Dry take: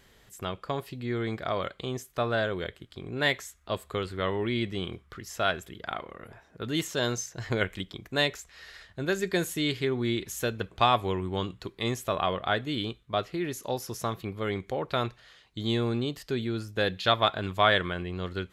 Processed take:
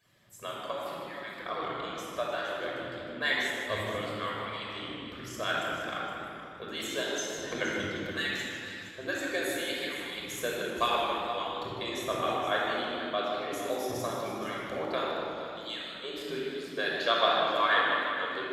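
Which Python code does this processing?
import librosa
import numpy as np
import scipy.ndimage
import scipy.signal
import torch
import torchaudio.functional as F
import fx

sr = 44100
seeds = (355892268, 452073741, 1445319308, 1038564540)

p1 = fx.hpss_only(x, sr, part='percussive')
p2 = fx.highpass(p1, sr, hz=110.0, slope=6)
p3 = p2 + fx.echo_single(p2, sr, ms=469, db=-12.0, dry=0)
p4 = fx.room_shoebox(p3, sr, seeds[0], volume_m3=4000.0, walls='mixed', distance_m=5.6)
p5 = fx.echo_warbled(p4, sr, ms=154, feedback_pct=52, rate_hz=2.8, cents=114, wet_db=-9.5)
y = p5 * 10.0 ** (-7.0 / 20.0)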